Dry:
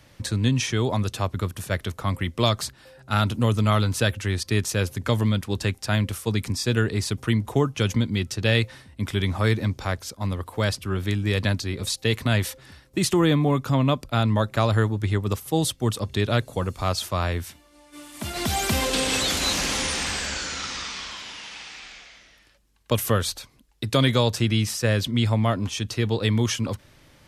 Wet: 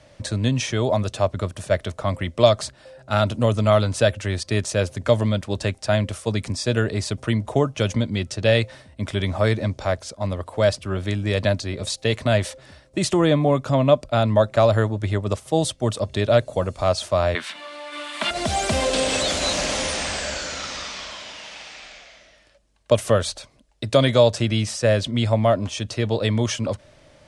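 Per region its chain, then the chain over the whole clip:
17.35–18.31 HPF 190 Hz 24 dB/oct + upward compressor, threshold -38 dBFS + band shelf 2000 Hz +14 dB 2.5 oct
whole clip: steep low-pass 10000 Hz 48 dB/oct; bell 610 Hz +13.5 dB 0.4 oct

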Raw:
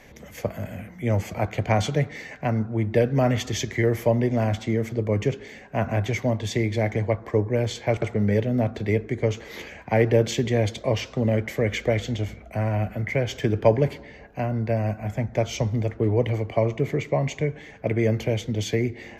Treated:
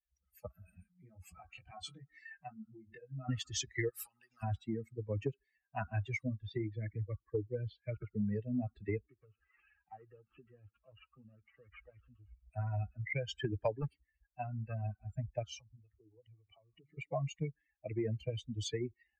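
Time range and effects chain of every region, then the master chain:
0.62–3.29 compressor, threshold -28 dBFS + doubler 23 ms -3 dB
3.89–4.43 compressor 4:1, threshold -30 dBFS + spectral compressor 2:1
6.23–8.33 Butterworth band-stop 820 Hz, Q 1.5 + air absorption 210 m
9.01–12.44 CVSD 16 kbps + compressor 2:1, threshold -34 dBFS
13.72–14.81 hard clip -15.5 dBFS + high shelf 9400 Hz +3.5 dB
15.45–16.98 notches 50/100/150/200/250/300 Hz + compressor 5:1, threshold -30 dBFS
whole clip: per-bin expansion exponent 3; compressor 4:1, threshold -31 dBFS; gain -1.5 dB

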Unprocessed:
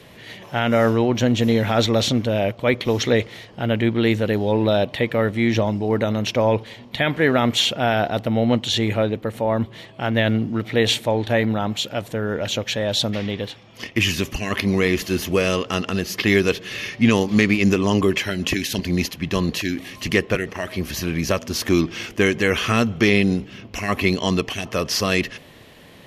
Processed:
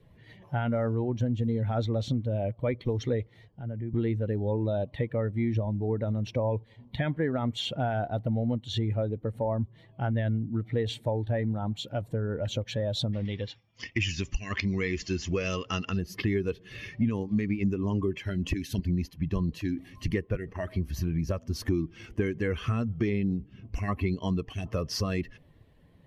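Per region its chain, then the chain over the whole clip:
3.48–3.94 treble ducked by the level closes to 2100 Hz, closed at -19 dBFS + compressor 3:1, threshold -32 dBFS + three-band expander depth 40%
13.25–15.97 expander -45 dBFS + rippled Chebyshev low-pass 7300 Hz, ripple 3 dB + high shelf 2200 Hz +10.5 dB
whole clip: per-bin expansion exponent 1.5; tilt -3 dB/oct; compressor 4:1, threshold -27 dBFS

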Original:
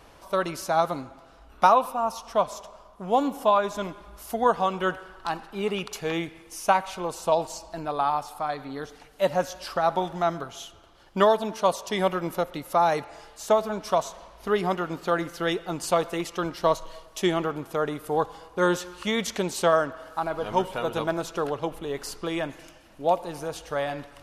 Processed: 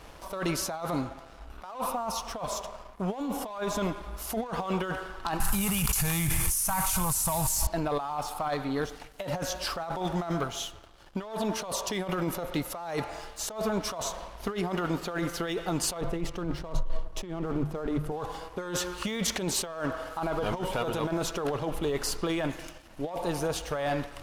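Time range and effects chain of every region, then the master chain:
5.4–7.67 CVSD 64 kbps + EQ curve 130 Hz 0 dB, 420 Hz -28 dB, 930 Hz -11 dB, 3700 Hz -12 dB, 12000 Hz +12 dB + fast leveller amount 100%
16.01–18.12 G.711 law mismatch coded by A + tilt -3 dB/oct + notches 50/100/150 Hz
whole clip: negative-ratio compressor -31 dBFS, ratio -1; sample leveller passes 2; low shelf 81 Hz +6.5 dB; gain -7.5 dB

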